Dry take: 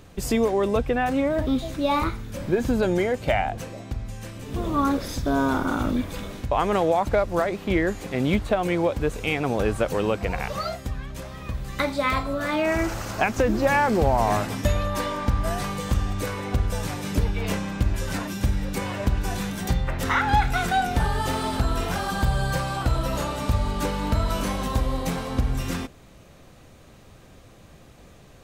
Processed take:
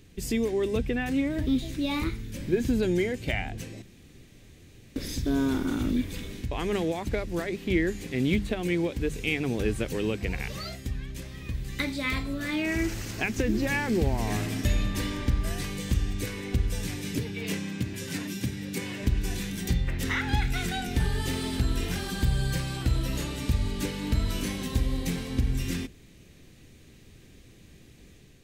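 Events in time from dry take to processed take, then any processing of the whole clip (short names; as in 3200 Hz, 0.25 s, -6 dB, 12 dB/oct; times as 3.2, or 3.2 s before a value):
3.82–4.96 room tone
14.29–15.14 reverb throw, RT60 2.2 s, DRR 5.5 dB
17.15–19.03 HPF 110 Hz 24 dB/oct
whole clip: AGC gain up to 3 dB; band shelf 870 Hz -12.5 dB; notches 50/100/150/200 Hz; gain -4.5 dB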